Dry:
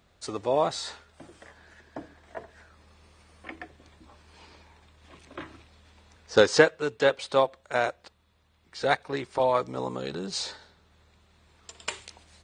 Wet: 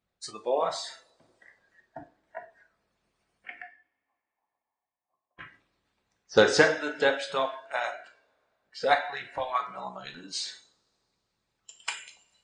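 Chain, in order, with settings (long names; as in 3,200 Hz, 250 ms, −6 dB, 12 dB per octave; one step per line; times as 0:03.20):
0:03.62–0:05.39: formant resonators in series a
harmonic and percussive parts rebalanced harmonic −17 dB
coupled-rooms reverb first 0.63 s, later 3.2 s, from −20 dB, DRR 3 dB
noise reduction from a noise print of the clip's start 15 dB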